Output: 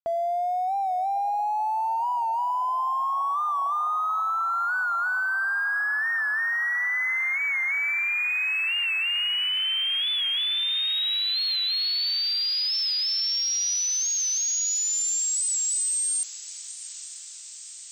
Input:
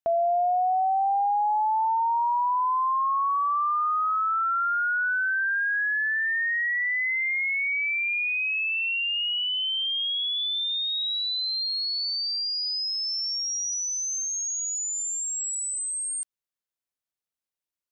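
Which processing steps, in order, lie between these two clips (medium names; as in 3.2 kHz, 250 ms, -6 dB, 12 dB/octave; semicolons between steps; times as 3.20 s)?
7.38–8.31 s: tilt EQ -4 dB/octave; peak limiter -29 dBFS, peak gain reduction 9 dB; crossover distortion -57.5 dBFS; on a send: echo that smears into a reverb 910 ms, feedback 70%, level -16 dB; on the sum: warped record 45 rpm, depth 100 cents; trim +6.5 dB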